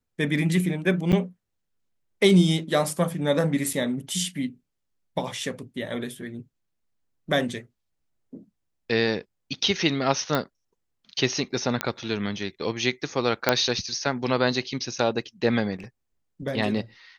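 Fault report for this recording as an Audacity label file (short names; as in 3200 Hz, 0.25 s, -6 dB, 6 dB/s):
1.120000	1.130000	gap 7 ms
3.730000	3.730000	gap 2.5 ms
10.350000	10.350000	pop -11 dBFS
11.810000	11.810000	pop -8 dBFS
13.490000	13.490000	pop -3 dBFS
15.750000	15.870000	clipped -34 dBFS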